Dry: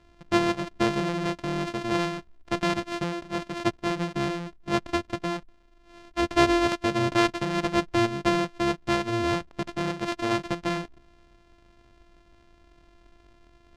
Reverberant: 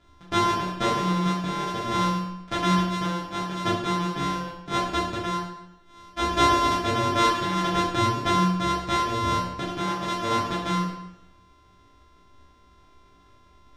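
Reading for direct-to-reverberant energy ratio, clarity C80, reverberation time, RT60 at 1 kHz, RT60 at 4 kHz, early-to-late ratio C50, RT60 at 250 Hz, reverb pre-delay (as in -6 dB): -6.5 dB, 4.5 dB, 0.90 s, 0.90 s, 0.80 s, 1.5 dB, 0.85 s, 5 ms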